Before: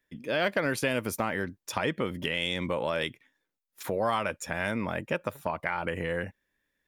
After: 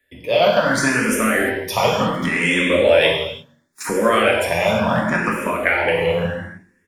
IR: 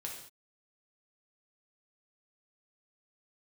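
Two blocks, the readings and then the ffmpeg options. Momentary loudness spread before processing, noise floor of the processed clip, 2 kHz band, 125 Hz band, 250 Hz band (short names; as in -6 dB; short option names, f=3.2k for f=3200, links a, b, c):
6 LU, -63 dBFS, +13.0 dB, +10.5 dB, +12.5 dB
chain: -filter_complex "[0:a]acrossover=split=280|2200[a][b][c];[a]asoftclip=type=hard:threshold=-36dB[d];[d][b][c]amix=inputs=3:normalize=0[e];[1:a]atrim=start_sample=2205,asetrate=29106,aresample=44100[f];[e][f]afir=irnorm=-1:irlink=0,dynaudnorm=f=620:g=5:m=3dB,bandreject=f=47.03:t=h:w=4,bandreject=f=94.06:t=h:w=4,bandreject=f=141.09:t=h:w=4,bandreject=f=188.12:t=h:w=4,bandreject=f=235.15:t=h:w=4,bandreject=f=282.18:t=h:w=4,bandreject=f=329.21:t=h:w=4,bandreject=f=376.24:t=h:w=4,bandreject=f=423.27:t=h:w=4,asplit=2[g][h];[h]adelay=130,lowpass=f=1.3k:p=1,volume=-23dB,asplit=2[i][j];[j]adelay=130,lowpass=f=1.3k:p=1,volume=0.42,asplit=2[k][l];[l]adelay=130,lowpass=f=1.3k:p=1,volume=0.42[m];[i][k][m]amix=inputs=3:normalize=0[n];[g][n]amix=inputs=2:normalize=0,alimiter=level_in=11.5dB:limit=-1dB:release=50:level=0:latency=1,asplit=2[o][p];[p]afreqshift=0.7[q];[o][q]amix=inputs=2:normalize=1,volume=1.5dB"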